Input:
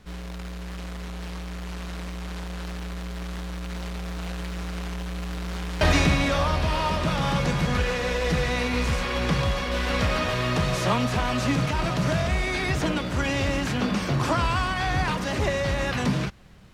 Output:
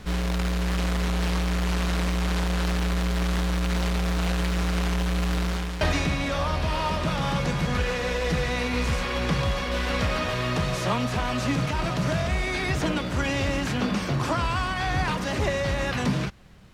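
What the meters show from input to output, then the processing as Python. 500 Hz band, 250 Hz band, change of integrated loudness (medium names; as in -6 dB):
-0.5 dB, +0.5 dB, 0.0 dB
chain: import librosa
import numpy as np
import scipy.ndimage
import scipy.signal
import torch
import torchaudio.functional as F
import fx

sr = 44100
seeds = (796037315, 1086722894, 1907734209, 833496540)

y = fx.rider(x, sr, range_db=10, speed_s=0.5)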